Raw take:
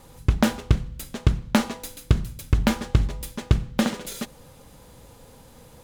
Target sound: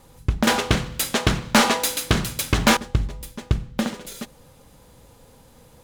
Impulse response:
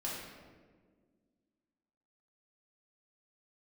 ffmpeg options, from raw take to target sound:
-filter_complex "[0:a]asettb=1/sr,asplit=3[a][b][c];[a]atrim=end=0.474[d];[b]atrim=start=0.47:end=2.77,asetpts=PTS-STARTPTS,afade=t=in:d=0.004:c=qsin,afade=t=out:st=2.296:d=0.004:c=qsin,asplit=2[e][f];[f]highpass=f=720:p=1,volume=27dB,asoftclip=type=tanh:threshold=-3.5dB[g];[e][g]amix=inputs=2:normalize=0,lowpass=f=7.9k:p=1,volume=-6dB[h];[c]atrim=start=2.766[i];[d][h]acrossfade=d=0.004:c1=hsin:c2=qsin[j];[j][i]acrossfade=d=0.004:c1=qsin:c2=hsin,volume=-2dB"

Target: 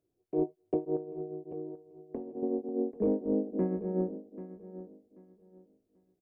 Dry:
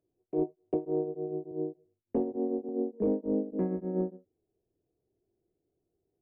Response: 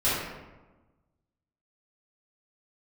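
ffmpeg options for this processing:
-filter_complex "[0:a]asettb=1/sr,asplit=3[a][b][c];[a]atrim=end=0.964[d];[b]atrim=start=0.96:end=2.43,asetpts=PTS-STARTPTS,afade=t=in:d=0.004:c=qsin,afade=t=out:st=1.466:d=0.004:c=qsin,acompressor=threshold=-36dB:ratio=12[e];[c]atrim=start=2.426[f];[d][e]acrossfade=d=0.004:c1=hsin:c2=qsin[g];[g][f]acrossfade=d=0.004:c1=qsin:c2=hsin,asplit=2[h][i];[i]aecho=0:1:787|1574|2361:0.2|0.0459|0.0106[j];[h][j]amix=inputs=2:normalize=0"

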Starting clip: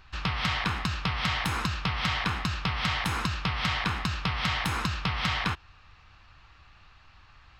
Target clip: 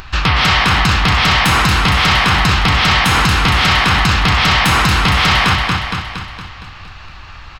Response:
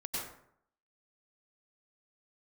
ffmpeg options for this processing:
-af "aecho=1:1:232|464|696|928|1160|1392|1624:0.447|0.246|0.135|0.0743|0.0409|0.0225|0.0124,acompressor=mode=upward:threshold=-49dB:ratio=2.5,apsyclip=26dB,volume=-7dB"

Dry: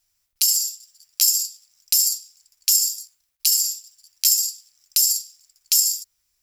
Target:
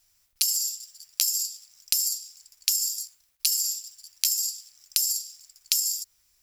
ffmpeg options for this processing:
-af "acompressor=threshold=-26dB:ratio=16,volume=5dB"

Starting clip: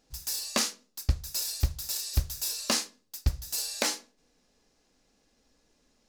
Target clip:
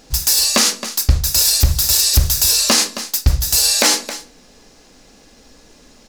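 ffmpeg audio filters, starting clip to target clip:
-filter_complex "[0:a]asplit=2[a][b];[b]aecho=0:1:269:0.0841[c];[a][c]amix=inputs=2:normalize=0,alimiter=level_in=24.5dB:limit=-1dB:release=50:level=0:latency=1,volume=-2.5dB"

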